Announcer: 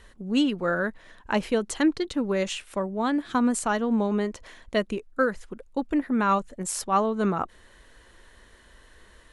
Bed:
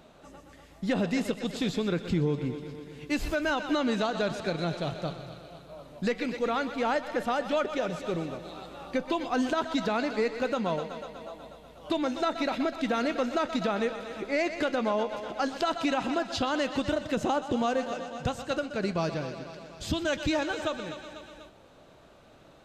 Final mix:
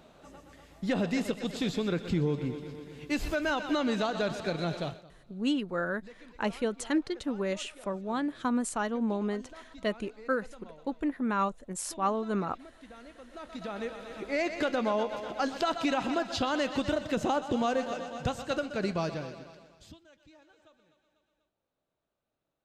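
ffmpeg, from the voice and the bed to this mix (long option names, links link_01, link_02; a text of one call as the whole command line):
ffmpeg -i stem1.wav -i stem2.wav -filter_complex "[0:a]adelay=5100,volume=-6dB[link_01];[1:a]volume=19.5dB,afade=type=out:start_time=4.82:duration=0.22:silence=0.0944061,afade=type=in:start_time=13.28:duration=1.31:silence=0.0891251,afade=type=out:start_time=18.86:duration=1.14:silence=0.0334965[link_02];[link_01][link_02]amix=inputs=2:normalize=0" out.wav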